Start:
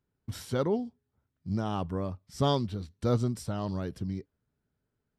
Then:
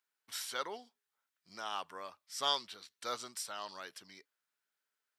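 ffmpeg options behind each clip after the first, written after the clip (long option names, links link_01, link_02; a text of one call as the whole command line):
ffmpeg -i in.wav -af "highpass=1400,volume=4dB" out.wav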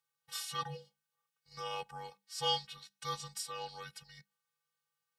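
ffmpeg -i in.wav -af "afftfilt=real='hypot(re,im)*cos(PI*b)':imag='0':win_size=512:overlap=0.75,afreqshift=-200,volume=3.5dB" out.wav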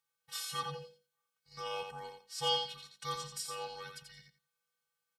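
ffmpeg -i in.wav -af "aecho=1:1:86|172|258:0.501|0.0902|0.0162" out.wav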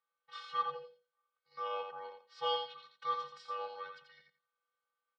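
ffmpeg -i in.wav -af "highpass=380,equalizer=frequency=560:width_type=q:width=4:gain=9,equalizer=frequency=1200:width_type=q:width=4:gain=8,equalizer=frequency=2700:width_type=q:width=4:gain=-5,lowpass=frequency=3600:width=0.5412,lowpass=frequency=3600:width=1.3066,volume=-2.5dB" out.wav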